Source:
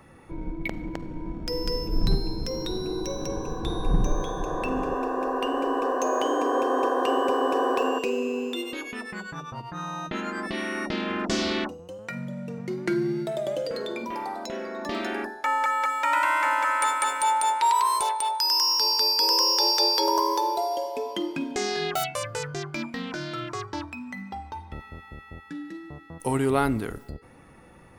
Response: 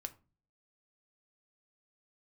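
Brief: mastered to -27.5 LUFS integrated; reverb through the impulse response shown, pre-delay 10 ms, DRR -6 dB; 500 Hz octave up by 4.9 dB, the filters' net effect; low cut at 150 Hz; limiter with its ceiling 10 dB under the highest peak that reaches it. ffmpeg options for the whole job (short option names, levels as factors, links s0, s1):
-filter_complex "[0:a]highpass=150,equalizer=f=500:t=o:g=6,alimiter=limit=0.141:level=0:latency=1,asplit=2[s0][s1];[1:a]atrim=start_sample=2205,adelay=10[s2];[s1][s2]afir=irnorm=-1:irlink=0,volume=2.82[s3];[s0][s3]amix=inputs=2:normalize=0,volume=0.422"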